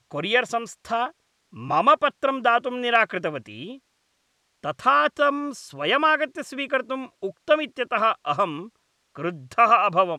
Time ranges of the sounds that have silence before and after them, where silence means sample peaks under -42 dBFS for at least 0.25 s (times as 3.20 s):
1.53–3.77 s
4.64–8.68 s